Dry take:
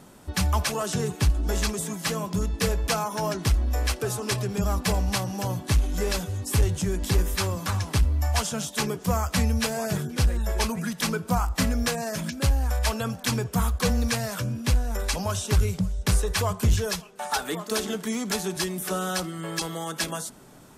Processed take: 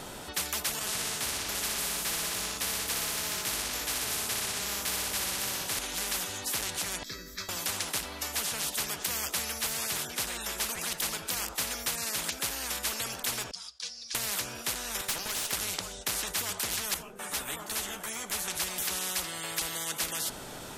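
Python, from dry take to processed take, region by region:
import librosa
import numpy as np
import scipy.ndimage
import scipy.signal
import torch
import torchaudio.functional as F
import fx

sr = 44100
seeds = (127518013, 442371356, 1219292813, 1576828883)

y = fx.chain(x, sr, fx.room_flutter(wall_m=10.3, rt60_s=1.1),
    fx.detune_double(cents=24), at=(0.79, 5.79))
y = fx.chain(y, sr, fx.fixed_phaser(hz=2900.0, stages=6),
    fx.comb_fb(f0_hz=650.0, decay_s=0.44, harmonics='all', damping=0.0, mix_pct=90), at=(7.03, 7.49))
y = fx.chain(y, sr, fx.bandpass_q(hz=5000.0, q=12.0),
    fx.resample_bad(factor=2, down='none', up='filtered'), at=(13.51, 14.15))
y = fx.chain(y, sr, fx.highpass(hz=370.0, slope=24),
    fx.tube_stage(drive_db=25.0, bias=0.75), at=(15.01, 15.53))
y = fx.chain(y, sr, fx.peak_eq(hz=4200.0, db=-14.0, octaves=1.6),
    fx.ensemble(), at=(16.94, 18.48))
y = fx.peak_eq(y, sr, hz=3500.0, db=5.0, octaves=1.1)
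y = fx.notch(y, sr, hz=1100.0, q=15.0)
y = fx.spectral_comp(y, sr, ratio=10.0)
y = F.gain(torch.from_numpy(y), -4.0).numpy()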